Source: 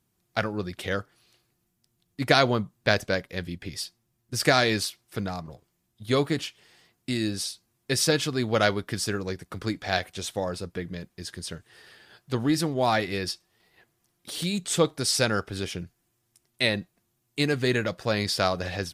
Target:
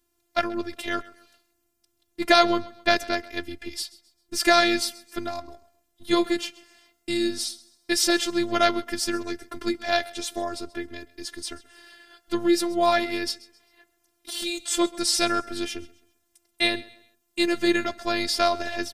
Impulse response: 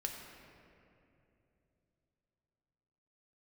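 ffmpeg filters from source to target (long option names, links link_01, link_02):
-af "afftfilt=real='hypot(re,im)*cos(PI*b)':imag='0':win_size=512:overlap=0.75,aecho=1:1:132|264|396:0.0944|0.0321|0.0109,volume=5.5dB"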